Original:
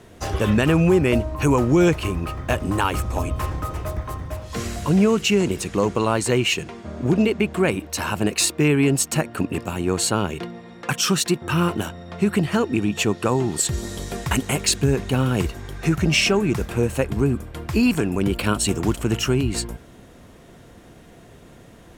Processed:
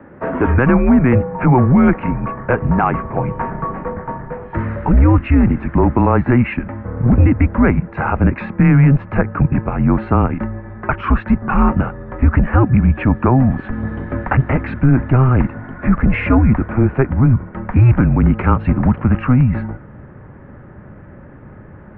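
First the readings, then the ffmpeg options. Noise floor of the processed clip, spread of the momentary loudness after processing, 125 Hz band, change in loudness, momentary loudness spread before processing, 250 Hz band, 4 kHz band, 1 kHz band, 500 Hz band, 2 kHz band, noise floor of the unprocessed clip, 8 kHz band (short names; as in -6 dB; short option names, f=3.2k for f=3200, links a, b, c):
-39 dBFS, 12 LU, +10.0 dB, +6.0 dB, 11 LU, +6.5 dB, under -15 dB, +7.5 dB, +1.0 dB, +2.5 dB, -47 dBFS, under -40 dB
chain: -af "highpass=f=240:t=q:w=0.5412,highpass=f=240:t=q:w=1.307,lowpass=f=2k:t=q:w=0.5176,lowpass=f=2k:t=q:w=0.7071,lowpass=f=2k:t=q:w=1.932,afreqshift=-130,asubboost=boost=2.5:cutoff=190,apsyclip=14dB,volume=-5dB"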